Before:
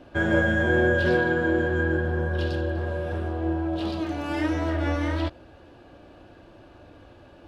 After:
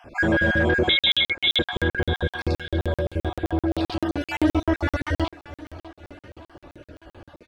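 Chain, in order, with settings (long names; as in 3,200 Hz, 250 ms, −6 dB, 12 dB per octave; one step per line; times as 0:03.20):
time-frequency cells dropped at random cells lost 38%
0:04.28–0:04.80: comb filter 3 ms, depth 97%
in parallel at 0 dB: brickwall limiter −18.5 dBFS, peak gain reduction 8.5 dB
on the sum: soft clipping −11.5 dBFS, distortion −20 dB
0:00.89–0:01.59: voice inversion scrambler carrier 3,800 Hz
on a send: repeating echo 588 ms, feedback 53%, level −17 dB
on the sum: regular buffer underruns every 0.13 s, samples 2,048, zero, from 0:00.99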